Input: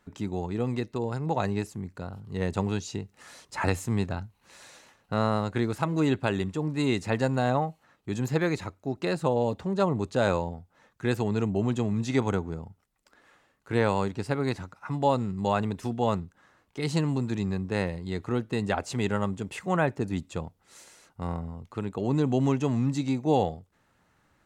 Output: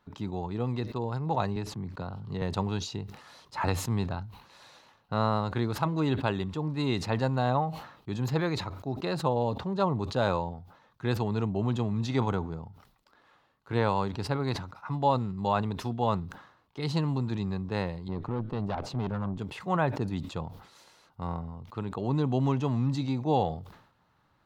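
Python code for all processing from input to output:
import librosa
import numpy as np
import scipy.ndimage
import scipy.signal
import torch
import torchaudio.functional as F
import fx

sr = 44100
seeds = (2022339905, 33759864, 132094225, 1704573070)

y = fx.chain(x, sr, fx.high_shelf(hz=9200.0, db=-12.0),
    fx.band_squash(depth_pct=70), at=(1.56, 2.42))
y = fx.chain(y, sr, fx.highpass(hz=140.0, slope=12),
    fx.tilt_eq(slope=-3.0),
    fx.tube_stage(drive_db=24.0, bias=0.75), at=(18.08, 19.39))
y = fx.graphic_eq(y, sr, hz=(125, 1000, 2000, 4000, 8000), db=(5, 7, -3, 7, -10))
y = fx.sustainer(y, sr, db_per_s=86.0)
y = y * 10.0 ** (-5.0 / 20.0)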